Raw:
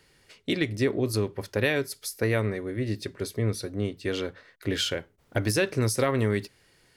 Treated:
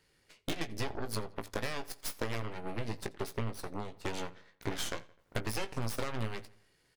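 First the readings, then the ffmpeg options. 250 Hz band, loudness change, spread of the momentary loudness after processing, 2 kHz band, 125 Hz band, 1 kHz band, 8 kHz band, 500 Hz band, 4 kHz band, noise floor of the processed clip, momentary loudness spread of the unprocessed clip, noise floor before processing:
−12.5 dB, −11.0 dB, 6 LU, −10.5 dB, −11.5 dB, −3.5 dB, −8.5 dB, −13.0 dB, −9.5 dB, −71 dBFS, 9 LU, −64 dBFS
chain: -filter_complex "[0:a]acompressor=threshold=-32dB:ratio=6,aeval=exprs='0.075*(cos(1*acos(clip(val(0)/0.075,-1,1)))-cos(1*PI/2))+0.0168*(cos(3*acos(clip(val(0)/0.075,-1,1)))-cos(3*PI/2))+0.015*(cos(6*acos(clip(val(0)/0.075,-1,1)))-cos(6*PI/2))':channel_layout=same,asplit=2[link_01][link_02];[link_02]adelay=18,volume=-10dB[link_03];[link_01][link_03]amix=inputs=2:normalize=0,asplit=2[link_04][link_05];[link_05]adelay=85,lowpass=frequency=4500:poles=1,volume=-20dB,asplit=2[link_06][link_07];[link_07]adelay=85,lowpass=frequency=4500:poles=1,volume=0.49,asplit=2[link_08][link_09];[link_09]adelay=85,lowpass=frequency=4500:poles=1,volume=0.49,asplit=2[link_10][link_11];[link_11]adelay=85,lowpass=frequency=4500:poles=1,volume=0.49[link_12];[link_04][link_06][link_08][link_10][link_12]amix=inputs=5:normalize=0"

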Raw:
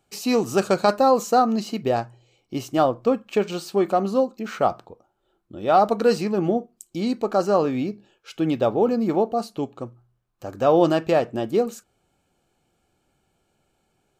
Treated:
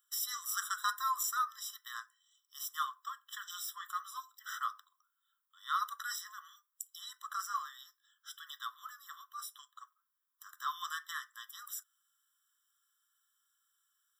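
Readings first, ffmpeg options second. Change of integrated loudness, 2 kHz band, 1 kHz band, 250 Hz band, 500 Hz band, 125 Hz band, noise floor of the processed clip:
−17.0 dB, −7.5 dB, −15.0 dB, below −40 dB, below −40 dB, below −40 dB, −84 dBFS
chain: -af "aemphasis=mode=production:type=bsi,aeval=exprs='val(0)+0.00251*(sin(2*PI*60*n/s)+sin(2*PI*2*60*n/s)/2+sin(2*PI*3*60*n/s)/3+sin(2*PI*4*60*n/s)/4+sin(2*PI*5*60*n/s)/5)':channel_layout=same,afftfilt=real='re*eq(mod(floor(b*sr/1024/1000),2),1)':imag='im*eq(mod(floor(b*sr/1024/1000),2),1)':win_size=1024:overlap=0.75,volume=-7dB"

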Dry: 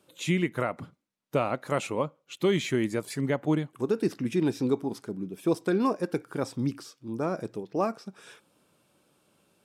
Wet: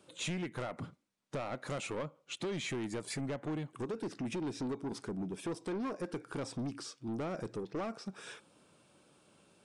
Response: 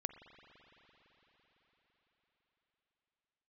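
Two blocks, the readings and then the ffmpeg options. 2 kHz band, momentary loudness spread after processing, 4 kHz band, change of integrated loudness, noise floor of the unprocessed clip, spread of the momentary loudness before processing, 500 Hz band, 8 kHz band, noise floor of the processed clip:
−8.0 dB, 6 LU, −5.0 dB, −10.5 dB, −72 dBFS, 9 LU, −11.0 dB, −3.0 dB, −71 dBFS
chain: -af "acompressor=threshold=-31dB:ratio=6,asoftclip=type=tanh:threshold=-35dB,aresample=22050,aresample=44100,volume=2dB"

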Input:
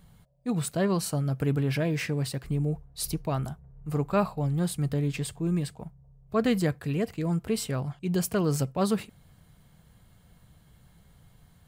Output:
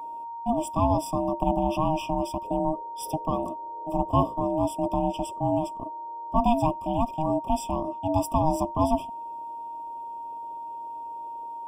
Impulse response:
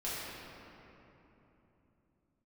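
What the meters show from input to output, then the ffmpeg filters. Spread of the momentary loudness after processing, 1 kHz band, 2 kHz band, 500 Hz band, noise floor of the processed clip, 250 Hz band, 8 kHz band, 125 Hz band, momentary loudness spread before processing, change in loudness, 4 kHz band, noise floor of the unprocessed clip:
13 LU, +13.0 dB, −10.5 dB, +3.0 dB, −37 dBFS, +1.0 dB, −5.5 dB, −4.5 dB, 6 LU, +1.0 dB, −4.5 dB, −59 dBFS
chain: -filter_complex "[0:a]acrossover=split=180|1200[link_01][link_02][link_03];[link_02]acontrast=89[link_04];[link_01][link_04][link_03]amix=inputs=3:normalize=0,aeval=exprs='val(0)+0.0398*sin(2*PI*1400*n/s)':channel_layout=same,aeval=exprs='val(0)*sin(2*PI*470*n/s)':channel_layout=same,afftfilt=real='re*eq(mod(floor(b*sr/1024/1200),2),0)':imag='im*eq(mod(floor(b*sr/1024/1200),2),0)':win_size=1024:overlap=0.75"

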